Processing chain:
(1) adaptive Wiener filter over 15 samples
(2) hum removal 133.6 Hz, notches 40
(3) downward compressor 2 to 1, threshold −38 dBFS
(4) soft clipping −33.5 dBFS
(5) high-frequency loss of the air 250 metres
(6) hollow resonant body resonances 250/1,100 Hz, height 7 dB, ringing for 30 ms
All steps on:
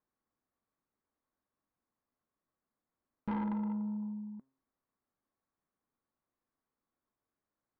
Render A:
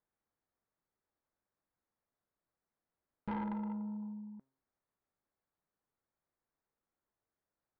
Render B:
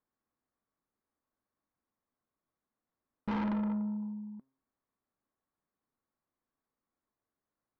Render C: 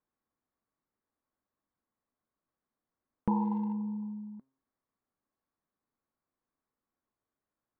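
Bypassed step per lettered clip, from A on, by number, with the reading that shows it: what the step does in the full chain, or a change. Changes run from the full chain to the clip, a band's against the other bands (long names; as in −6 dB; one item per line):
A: 6, 250 Hz band −3.5 dB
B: 3, average gain reduction 4.5 dB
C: 4, distortion level −9 dB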